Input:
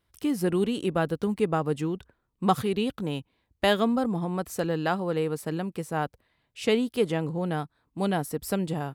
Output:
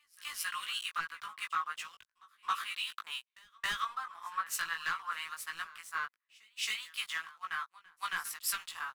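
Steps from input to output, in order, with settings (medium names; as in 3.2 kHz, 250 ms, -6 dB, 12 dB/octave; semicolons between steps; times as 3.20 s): Chebyshev high-pass 1.1 kHz, order 5; treble shelf 4.8 kHz -9.5 dB; waveshaping leveller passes 3; compression 12:1, threshold -30 dBFS, peak gain reduction 10 dB; doubling 18 ms -3 dB; pre-echo 271 ms -13.5 dB; three bands expanded up and down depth 100%; trim -4 dB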